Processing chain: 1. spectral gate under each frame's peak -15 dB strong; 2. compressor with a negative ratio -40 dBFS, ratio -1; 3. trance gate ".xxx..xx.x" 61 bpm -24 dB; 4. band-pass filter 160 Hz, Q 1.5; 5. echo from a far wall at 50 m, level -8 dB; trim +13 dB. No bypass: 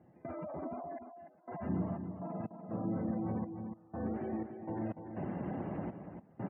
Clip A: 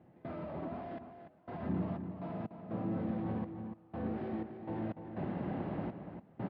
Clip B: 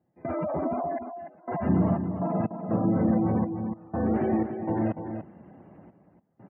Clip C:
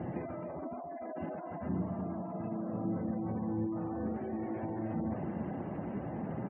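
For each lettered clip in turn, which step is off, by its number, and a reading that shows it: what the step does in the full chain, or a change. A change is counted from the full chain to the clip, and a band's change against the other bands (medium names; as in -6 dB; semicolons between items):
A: 1, 2 kHz band +3.0 dB; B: 2, loudness change +12.0 LU; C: 3, crest factor change -2.5 dB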